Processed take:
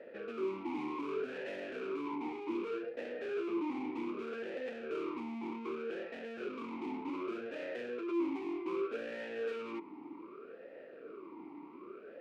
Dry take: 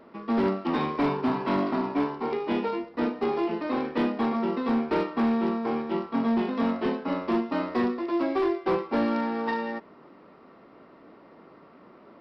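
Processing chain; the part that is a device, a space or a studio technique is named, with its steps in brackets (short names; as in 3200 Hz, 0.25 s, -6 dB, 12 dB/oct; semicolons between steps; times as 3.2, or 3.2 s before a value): talk box (tube stage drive 44 dB, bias 0.8; vowel sweep e-u 0.65 Hz); gain +16 dB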